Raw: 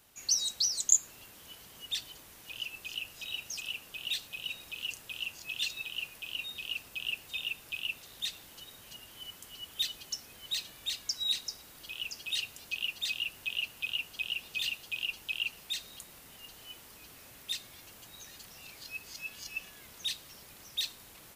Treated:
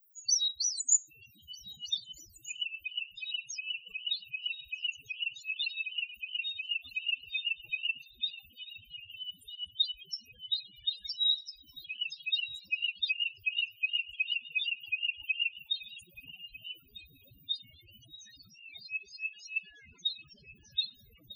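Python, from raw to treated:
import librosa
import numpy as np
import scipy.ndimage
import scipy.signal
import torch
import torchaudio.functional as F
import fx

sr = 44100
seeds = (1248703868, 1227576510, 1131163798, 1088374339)

y = fx.lowpass(x, sr, hz=5800.0, slope=24, at=(19.63, 20.71), fade=0.02)
y = fx.dmg_noise_colour(y, sr, seeds[0], colour='blue', level_db=-54.0)
y = fx.spec_topn(y, sr, count=4)
y = fx.echo_stepped(y, sr, ms=312, hz=180.0, octaves=1.4, feedback_pct=70, wet_db=-7)
y = F.gain(torch.from_numpy(y), 5.5).numpy()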